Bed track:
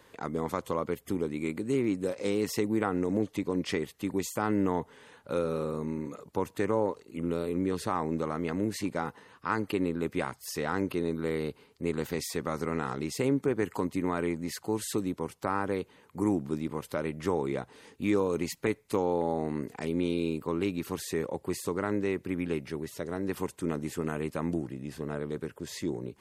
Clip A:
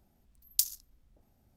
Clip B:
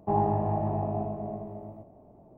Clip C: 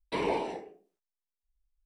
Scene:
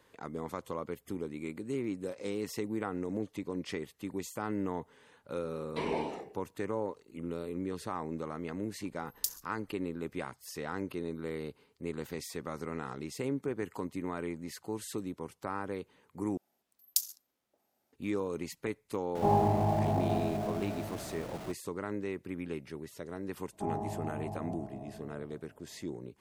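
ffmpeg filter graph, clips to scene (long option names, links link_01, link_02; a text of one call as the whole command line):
ffmpeg -i bed.wav -i cue0.wav -i cue1.wav -i cue2.wav -filter_complex "[1:a]asplit=2[link_01][link_02];[2:a]asplit=2[link_03][link_04];[0:a]volume=-7dB[link_05];[link_02]highpass=430[link_06];[link_03]aeval=exprs='val(0)+0.5*0.0126*sgn(val(0))':channel_layout=same[link_07];[link_05]asplit=2[link_08][link_09];[link_08]atrim=end=16.374[link_10];[link_06]atrim=end=1.56,asetpts=PTS-STARTPTS,volume=-2dB[link_11];[link_09]atrim=start=17.926[link_12];[3:a]atrim=end=1.85,asetpts=PTS-STARTPTS,volume=-4.5dB,afade=type=in:duration=0.004:curve=hsin,afade=type=out:start_time=1.846:duration=0.004:curve=hsin,adelay=5640[link_13];[link_01]atrim=end=1.56,asetpts=PTS-STARTPTS,volume=-6dB,afade=type=in:duration=0.004:curve=hsin,afade=type=out:start_time=1.556:duration=0.004:curve=hsin,adelay=8650[link_14];[link_07]atrim=end=2.37,asetpts=PTS-STARTPTS,volume=-1.5dB,afade=type=in:duration=0.004:curve=hsin,afade=type=out:start_time=2.366:duration=0.004:curve=hsin,adelay=19150[link_15];[link_04]atrim=end=2.37,asetpts=PTS-STARTPTS,volume=-11dB,afade=type=in:duration=0.004:curve=hsin,afade=type=out:start_time=2.366:duration=0.004:curve=hsin,adelay=23530[link_16];[link_10][link_11]acrossfade=duration=0.004:curve1=hsin:curve2=hsin[link_17];[link_17][link_12]acrossfade=duration=0.004:curve1=hsin:curve2=hsin[link_18];[link_18][link_13][link_14][link_15][link_16]amix=inputs=5:normalize=0" out.wav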